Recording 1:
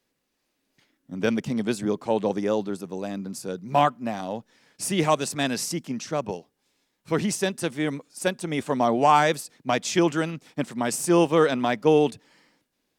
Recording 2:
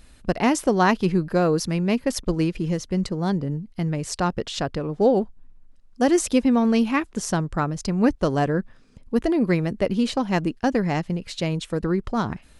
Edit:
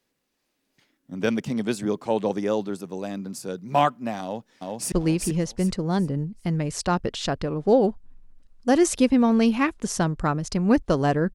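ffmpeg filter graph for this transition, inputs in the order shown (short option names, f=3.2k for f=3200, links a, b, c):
-filter_complex "[0:a]apad=whole_dur=11.34,atrim=end=11.34,atrim=end=4.922[a];[1:a]atrim=start=2.248:end=8.67[b];[a][b]acrossfade=d=0.004:c1=hsin:c2=hsin,asplit=2[c][d];[d]afade=t=in:st=4.22:d=0.01,afade=t=out:st=4.92:d=0.01,aecho=0:1:390|780|1170|1560:0.841395|0.252419|0.0757256|0.0227177[e];[c][e]amix=inputs=2:normalize=0"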